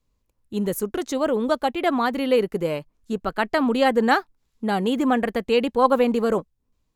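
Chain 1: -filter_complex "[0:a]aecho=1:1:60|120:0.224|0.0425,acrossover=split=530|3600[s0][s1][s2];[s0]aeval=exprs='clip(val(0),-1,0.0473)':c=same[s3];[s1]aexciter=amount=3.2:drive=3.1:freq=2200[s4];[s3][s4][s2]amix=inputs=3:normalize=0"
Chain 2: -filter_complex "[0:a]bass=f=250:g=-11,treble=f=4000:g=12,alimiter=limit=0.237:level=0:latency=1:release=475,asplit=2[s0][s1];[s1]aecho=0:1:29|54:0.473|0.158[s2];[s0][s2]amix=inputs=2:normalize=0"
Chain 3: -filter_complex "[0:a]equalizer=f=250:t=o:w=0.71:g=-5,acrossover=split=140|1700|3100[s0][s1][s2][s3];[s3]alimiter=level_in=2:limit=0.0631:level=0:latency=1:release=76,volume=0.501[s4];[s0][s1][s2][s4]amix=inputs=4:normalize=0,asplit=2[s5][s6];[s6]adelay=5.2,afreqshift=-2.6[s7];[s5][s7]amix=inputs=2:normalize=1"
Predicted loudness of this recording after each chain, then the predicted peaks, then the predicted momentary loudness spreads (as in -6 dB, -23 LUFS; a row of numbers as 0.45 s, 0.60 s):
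-22.5 LUFS, -25.5 LUFS, -26.5 LUFS; -4.0 dBFS, -9.5 dBFS, -7.0 dBFS; 10 LU, 8 LU, 11 LU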